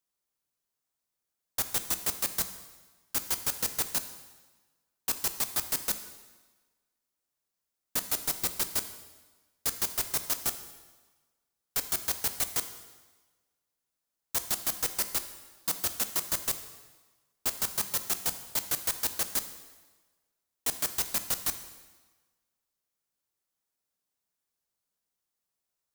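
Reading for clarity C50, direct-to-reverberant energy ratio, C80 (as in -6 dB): 11.0 dB, 8.5 dB, 12.5 dB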